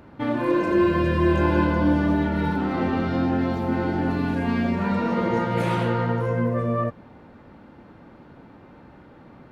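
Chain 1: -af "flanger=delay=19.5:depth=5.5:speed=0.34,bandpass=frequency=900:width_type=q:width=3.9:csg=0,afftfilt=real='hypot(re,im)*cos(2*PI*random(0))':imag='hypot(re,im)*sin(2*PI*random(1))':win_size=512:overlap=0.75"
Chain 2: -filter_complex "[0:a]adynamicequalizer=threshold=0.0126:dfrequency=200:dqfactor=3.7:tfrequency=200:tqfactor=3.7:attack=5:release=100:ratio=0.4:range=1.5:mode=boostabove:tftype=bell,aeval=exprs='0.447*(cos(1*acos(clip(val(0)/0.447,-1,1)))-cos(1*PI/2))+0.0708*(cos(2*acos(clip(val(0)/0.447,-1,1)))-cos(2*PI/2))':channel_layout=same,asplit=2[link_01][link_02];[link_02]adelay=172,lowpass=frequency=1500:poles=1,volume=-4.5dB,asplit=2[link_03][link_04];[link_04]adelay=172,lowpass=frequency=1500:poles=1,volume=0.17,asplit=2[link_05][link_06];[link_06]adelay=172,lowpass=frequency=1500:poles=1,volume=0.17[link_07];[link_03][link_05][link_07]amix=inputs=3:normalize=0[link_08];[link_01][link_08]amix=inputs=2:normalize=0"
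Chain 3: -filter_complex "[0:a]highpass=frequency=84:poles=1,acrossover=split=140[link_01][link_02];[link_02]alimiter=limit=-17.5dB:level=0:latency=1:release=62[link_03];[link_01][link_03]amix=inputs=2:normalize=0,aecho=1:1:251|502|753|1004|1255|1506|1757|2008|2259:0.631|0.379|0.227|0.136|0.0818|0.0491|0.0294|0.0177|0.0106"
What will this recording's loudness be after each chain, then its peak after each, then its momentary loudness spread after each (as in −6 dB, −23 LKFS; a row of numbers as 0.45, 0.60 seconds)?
−43.0, −21.0, −24.0 LKFS; −26.5, −4.5, −10.5 dBFS; 6, 6, 11 LU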